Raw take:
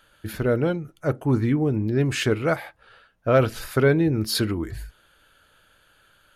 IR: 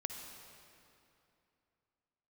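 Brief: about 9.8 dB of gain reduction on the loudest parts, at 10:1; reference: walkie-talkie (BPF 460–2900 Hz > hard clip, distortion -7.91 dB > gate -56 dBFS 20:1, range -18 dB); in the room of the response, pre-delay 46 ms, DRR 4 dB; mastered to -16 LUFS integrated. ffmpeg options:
-filter_complex "[0:a]acompressor=threshold=-23dB:ratio=10,asplit=2[a][b];[1:a]atrim=start_sample=2205,adelay=46[c];[b][c]afir=irnorm=-1:irlink=0,volume=-3.5dB[d];[a][d]amix=inputs=2:normalize=0,highpass=460,lowpass=2.9k,asoftclip=type=hard:threshold=-31dB,agate=range=-18dB:threshold=-56dB:ratio=20,volume=20.5dB"

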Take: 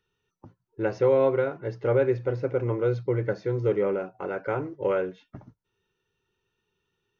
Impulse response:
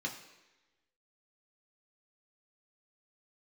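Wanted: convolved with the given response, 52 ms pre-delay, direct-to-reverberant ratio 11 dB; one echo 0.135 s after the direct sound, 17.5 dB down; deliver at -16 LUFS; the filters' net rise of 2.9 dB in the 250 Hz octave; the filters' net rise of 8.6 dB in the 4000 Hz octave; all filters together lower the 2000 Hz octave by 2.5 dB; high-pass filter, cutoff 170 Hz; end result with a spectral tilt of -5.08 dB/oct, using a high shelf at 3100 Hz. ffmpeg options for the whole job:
-filter_complex "[0:a]highpass=170,equalizer=f=250:t=o:g=5.5,equalizer=f=2k:t=o:g=-8,highshelf=f=3.1k:g=7,equalizer=f=4k:t=o:g=8.5,aecho=1:1:135:0.133,asplit=2[a][b];[1:a]atrim=start_sample=2205,adelay=52[c];[b][c]afir=irnorm=-1:irlink=0,volume=-13.5dB[d];[a][d]amix=inputs=2:normalize=0,volume=9dB"

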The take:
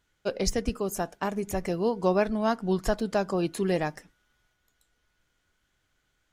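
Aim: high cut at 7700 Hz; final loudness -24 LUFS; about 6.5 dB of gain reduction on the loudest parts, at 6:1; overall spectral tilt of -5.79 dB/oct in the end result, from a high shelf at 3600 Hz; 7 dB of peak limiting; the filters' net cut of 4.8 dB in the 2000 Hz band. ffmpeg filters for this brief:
-af "lowpass=7.7k,equalizer=f=2k:t=o:g=-4.5,highshelf=f=3.6k:g=-7.5,acompressor=threshold=-27dB:ratio=6,volume=12dB,alimiter=limit=-13dB:level=0:latency=1"

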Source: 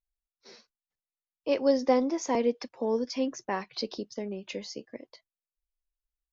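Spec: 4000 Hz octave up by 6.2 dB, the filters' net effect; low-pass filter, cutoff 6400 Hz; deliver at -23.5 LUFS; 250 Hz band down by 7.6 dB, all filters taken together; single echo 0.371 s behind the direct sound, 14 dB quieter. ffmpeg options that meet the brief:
-af "lowpass=6.4k,equalizer=f=250:t=o:g=-8.5,equalizer=f=4k:t=o:g=9,aecho=1:1:371:0.2,volume=8dB"

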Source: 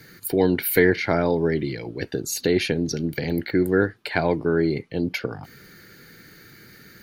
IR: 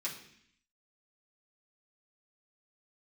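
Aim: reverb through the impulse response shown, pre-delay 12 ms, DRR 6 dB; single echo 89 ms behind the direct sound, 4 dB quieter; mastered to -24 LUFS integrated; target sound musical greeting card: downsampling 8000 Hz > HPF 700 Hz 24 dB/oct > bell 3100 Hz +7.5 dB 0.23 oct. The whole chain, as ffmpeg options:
-filter_complex "[0:a]aecho=1:1:89:0.631,asplit=2[a][b];[1:a]atrim=start_sample=2205,adelay=12[c];[b][c]afir=irnorm=-1:irlink=0,volume=-8dB[d];[a][d]amix=inputs=2:normalize=0,aresample=8000,aresample=44100,highpass=f=700:w=0.5412,highpass=f=700:w=1.3066,equalizer=f=3.1k:t=o:w=0.23:g=7.5,volume=4dB"

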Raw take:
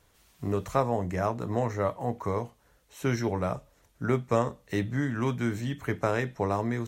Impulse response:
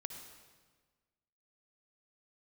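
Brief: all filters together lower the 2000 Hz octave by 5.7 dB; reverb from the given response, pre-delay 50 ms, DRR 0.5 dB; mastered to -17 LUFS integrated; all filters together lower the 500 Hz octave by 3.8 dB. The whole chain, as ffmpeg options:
-filter_complex "[0:a]equalizer=f=500:t=o:g=-4.5,equalizer=f=2k:t=o:g=-7,asplit=2[a][b];[1:a]atrim=start_sample=2205,adelay=50[c];[b][c]afir=irnorm=-1:irlink=0,volume=2dB[d];[a][d]amix=inputs=2:normalize=0,volume=12dB"

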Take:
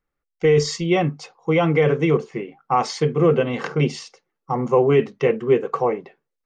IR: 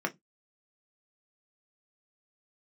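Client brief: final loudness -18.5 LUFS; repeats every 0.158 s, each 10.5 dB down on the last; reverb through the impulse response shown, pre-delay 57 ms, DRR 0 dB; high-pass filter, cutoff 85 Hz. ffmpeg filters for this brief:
-filter_complex "[0:a]highpass=85,aecho=1:1:158|316|474:0.299|0.0896|0.0269,asplit=2[a][b];[1:a]atrim=start_sample=2205,adelay=57[c];[b][c]afir=irnorm=-1:irlink=0,volume=-7dB[d];[a][d]amix=inputs=2:normalize=0,volume=-1.5dB"

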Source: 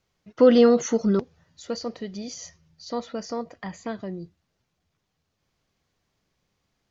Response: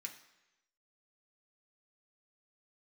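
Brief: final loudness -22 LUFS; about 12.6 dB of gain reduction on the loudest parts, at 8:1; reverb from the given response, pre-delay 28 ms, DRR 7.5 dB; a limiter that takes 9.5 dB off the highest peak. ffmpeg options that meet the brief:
-filter_complex "[0:a]acompressor=threshold=-24dB:ratio=8,alimiter=level_in=0.5dB:limit=-24dB:level=0:latency=1,volume=-0.5dB,asplit=2[a][b];[1:a]atrim=start_sample=2205,adelay=28[c];[b][c]afir=irnorm=-1:irlink=0,volume=-4dB[d];[a][d]amix=inputs=2:normalize=0,volume=13dB"

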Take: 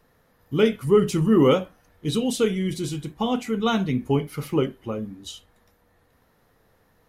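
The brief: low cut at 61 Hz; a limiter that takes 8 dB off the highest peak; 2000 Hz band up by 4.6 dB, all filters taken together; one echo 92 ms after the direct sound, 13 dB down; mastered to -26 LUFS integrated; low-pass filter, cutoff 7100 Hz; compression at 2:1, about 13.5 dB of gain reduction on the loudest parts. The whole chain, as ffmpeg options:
-af "highpass=61,lowpass=7.1k,equalizer=f=2k:t=o:g=6,acompressor=threshold=-38dB:ratio=2,alimiter=level_in=3dB:limit=-24dB:level=0:latency=1,volume=-3dB,aecho=1:1:92:0.224,volume=11dB"

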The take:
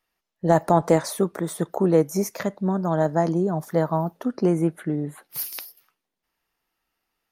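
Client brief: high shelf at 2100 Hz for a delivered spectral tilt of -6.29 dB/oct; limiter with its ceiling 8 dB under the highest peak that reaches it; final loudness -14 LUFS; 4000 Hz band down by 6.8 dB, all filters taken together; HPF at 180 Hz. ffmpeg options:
-af "highpass=180,highshelf=f=2.1k:g=-5.5,equalizer=f=4k:t=o:g=-3,volume=13dB,alimiter=limit=-1dB:level=0:latency=1"

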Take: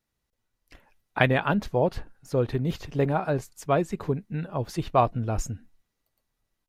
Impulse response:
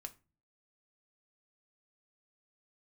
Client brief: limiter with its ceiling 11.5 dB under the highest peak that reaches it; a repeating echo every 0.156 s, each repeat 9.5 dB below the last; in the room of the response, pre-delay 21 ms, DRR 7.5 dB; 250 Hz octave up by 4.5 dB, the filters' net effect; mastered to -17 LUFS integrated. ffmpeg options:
-filter_complex "[0:a]equalizer=f=250:t=o:g=6,alimiter=limit=-15dB:level=0:latency=1,aecho=1:1:156|312|468|624:0.335|0.111|0.0365|0.012,asplit=2[a][b];[1:a]atrim=start_sample=2205,adelay=21[c];[b][c]afir=irnorm=-1:irlink=0,volume=-3dB[d];[a][d]amix=inputs=2:normalize=0,volume=9.5dB"

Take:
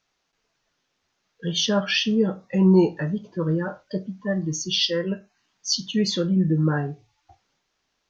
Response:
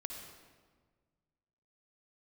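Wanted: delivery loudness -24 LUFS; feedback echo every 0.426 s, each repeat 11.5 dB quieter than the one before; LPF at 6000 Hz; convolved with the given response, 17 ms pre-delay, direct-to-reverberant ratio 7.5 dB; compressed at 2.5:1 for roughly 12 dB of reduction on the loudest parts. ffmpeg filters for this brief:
-filter_complex "[0:a]lowpass=6k,acompressor=threshold=-31dB:ratio=2.5,aecho=1:1:426|852|1278:0.266|0.0718|0.0194,asplit=2[a][b];[1:a]atrim=start_sample=2205,adelay=17[c];[b][c]afir=irnorm=-1:irlink=0,volume=-6dB[d];[a][d]amix=inputs=2:normalize=0,volume=7dB"

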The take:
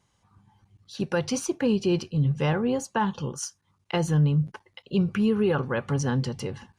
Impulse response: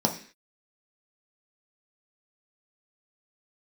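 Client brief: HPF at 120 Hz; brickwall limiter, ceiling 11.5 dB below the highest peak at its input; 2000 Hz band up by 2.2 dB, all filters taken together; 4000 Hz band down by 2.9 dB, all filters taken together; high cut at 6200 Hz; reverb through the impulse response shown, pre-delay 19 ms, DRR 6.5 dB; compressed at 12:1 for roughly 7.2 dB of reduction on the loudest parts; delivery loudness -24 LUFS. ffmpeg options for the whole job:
-filter_complex "[0:a]highpass=120,lowpass=6.2k,equalizer=f=2k:t=o:g=4.5,equalizer=f=4k:t=o:g=-6.5,acompressor=threshold=-26dB:ratio=12,alimiter=level_in=3dB:limit=-24dB:level=0:latency=1,volume=-3dB,asplit=2[a][b];[1:a]atrim=start_sample=2205,adelay=19[c];[b][c]afir=irnorm=-1:irlink=0,volume=-17.5dB[d];[a][d]amix=inputs=2:normalize=0,volume=9dB"

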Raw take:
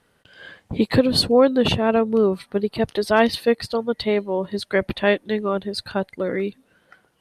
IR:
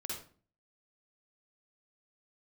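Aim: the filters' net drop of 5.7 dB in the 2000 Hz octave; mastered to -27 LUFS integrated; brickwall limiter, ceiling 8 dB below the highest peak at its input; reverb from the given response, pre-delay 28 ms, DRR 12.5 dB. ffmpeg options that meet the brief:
-filter_complex "[0:a]equalizer=f=2k:t=o:g=-7.5,alimiter=limit=-13.5dB:level=0:latency=1,asplit=2[a][b];[1:a]atrim=start_sample=2205,adelay=28[c];[b][c]afir=irnorm=-1:irlink=0,volume=-12.5dB[d];[a][d]amix=inputs=2:normalize=0,volume=-3dB"

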